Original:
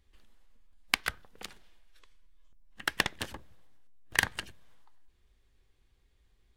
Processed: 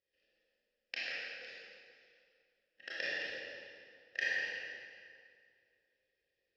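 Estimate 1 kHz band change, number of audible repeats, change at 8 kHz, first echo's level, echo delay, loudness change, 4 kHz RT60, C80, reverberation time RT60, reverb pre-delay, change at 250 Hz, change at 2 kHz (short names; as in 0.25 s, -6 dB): -18.0 dB, none, -19.0 dB, none, none, -7.0 dB, 1.8 s, -2.5 dB, 2.3 s, 24 ms, -14.5 dB, -4.0 dB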